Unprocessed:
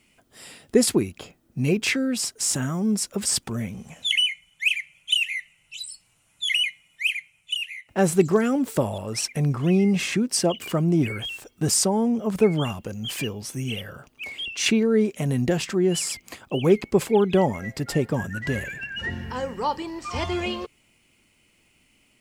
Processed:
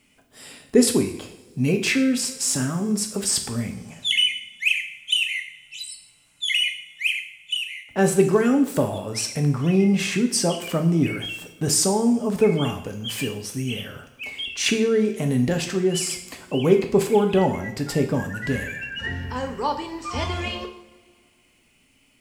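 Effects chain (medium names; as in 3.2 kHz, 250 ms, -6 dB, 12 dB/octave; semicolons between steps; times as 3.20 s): two-slope reverb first 0.6 s, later 2.3 s, from -20 dB, DRR 4.5 dB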